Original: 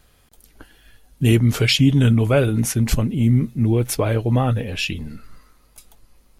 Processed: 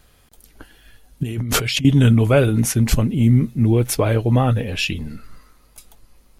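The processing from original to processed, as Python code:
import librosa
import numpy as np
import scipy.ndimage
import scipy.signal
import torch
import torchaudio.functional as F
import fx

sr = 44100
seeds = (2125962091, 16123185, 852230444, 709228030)

y = fx.over_compress(x, sr, threshold_db=-25.0, ratio=-1.0, at=(1.23, 1.85))
y = F.gain(torch.from_numpy(y), 2.0).numpy()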